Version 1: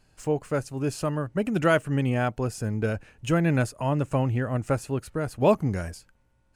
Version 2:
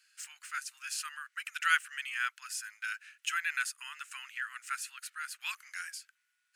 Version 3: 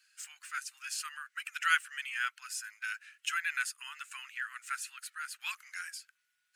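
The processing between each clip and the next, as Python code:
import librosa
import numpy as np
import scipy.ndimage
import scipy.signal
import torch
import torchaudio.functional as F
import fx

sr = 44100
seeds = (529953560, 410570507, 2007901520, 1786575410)

y1 = scipy.signal.sosfilt(scipy.signal.butter(8, 1400.0, 'highpass', fs=sr, output='sos'), x)
y1 = F.gain(torch.from_numpy(y1), 2.0).numpy()
y2 = fx.spec_quant(y1, sr, step_db=15)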